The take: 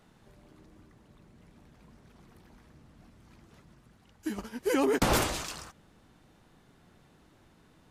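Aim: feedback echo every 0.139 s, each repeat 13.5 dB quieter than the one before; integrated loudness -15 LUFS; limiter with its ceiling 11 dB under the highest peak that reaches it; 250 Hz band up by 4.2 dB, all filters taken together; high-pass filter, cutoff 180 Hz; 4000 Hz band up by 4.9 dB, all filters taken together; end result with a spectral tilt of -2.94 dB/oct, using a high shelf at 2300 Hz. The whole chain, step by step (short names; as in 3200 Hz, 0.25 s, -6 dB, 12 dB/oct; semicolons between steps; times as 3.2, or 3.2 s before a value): HPF 180 Hz; bell 250 Hz +6 dB; high shelf 2300 Hz +3 dB; bell 4000 Hz +3.5 dB; limiter -21 dBFS; feedback echo 0.139 s, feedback 21%, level -13.5 dB; gain +17 dB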